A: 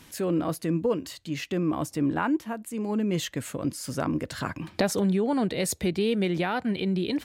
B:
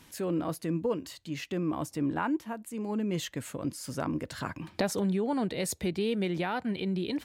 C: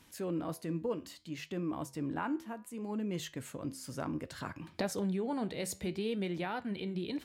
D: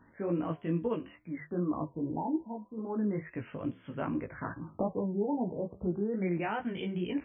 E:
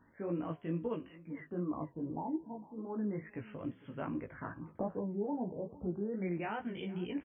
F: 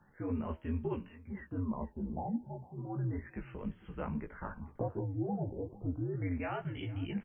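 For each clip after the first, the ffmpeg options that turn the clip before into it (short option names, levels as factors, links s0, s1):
-af "equalizer=f=920:w=5.3:g=2.5,volume=0.596"
-af "flanger=delay=9.5:depth=4.3:regen=-80:speed=0.63:shape=sinusoidal,volume=0.891"
-af "flanger=delay=16.5:depth=3:speed=2.4,afftfilt=real='re*lt(b*sr/1024,960*pow(3500/960,0.5+0.5*sin(2*PI*0.33*pts/sr)))':imag='im*lt(b*sr/1024,960*pow(3500/960,0.5+0.5*sin(2*PI*0.33*pts/sr)))':win_size=1024:overlap=0.75,volume=2.11"
-af "aecho=1:1:453|906:0.1|0.025,volume=0.562"
-af "afreqshift=-83,volume=1.12"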